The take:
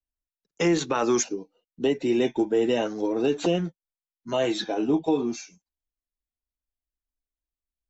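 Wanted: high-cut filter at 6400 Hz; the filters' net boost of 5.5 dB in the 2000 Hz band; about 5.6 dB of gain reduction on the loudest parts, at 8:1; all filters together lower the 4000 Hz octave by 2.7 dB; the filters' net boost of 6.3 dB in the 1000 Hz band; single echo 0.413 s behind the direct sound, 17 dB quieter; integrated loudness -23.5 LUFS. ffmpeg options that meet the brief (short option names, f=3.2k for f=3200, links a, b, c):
-af "lowpass=6.4k,equalizer=f=1k:t=o:g=7,equalizer=f=2k:t=o:g=7,equalizer=f=4k:t=o:g=-7.5,acompressor=threshold=-22dB:ratio=8,aecho=1:1:413:0.141,volume=5dB"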